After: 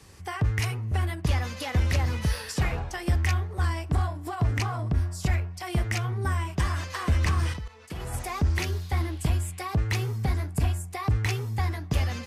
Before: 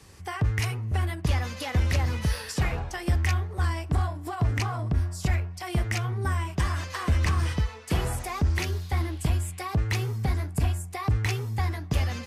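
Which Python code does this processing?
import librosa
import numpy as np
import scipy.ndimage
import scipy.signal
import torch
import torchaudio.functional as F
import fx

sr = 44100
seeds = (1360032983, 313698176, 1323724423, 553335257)

y = fx.level_steps(x, sr, step_db=17, at=(7.53, 8.14))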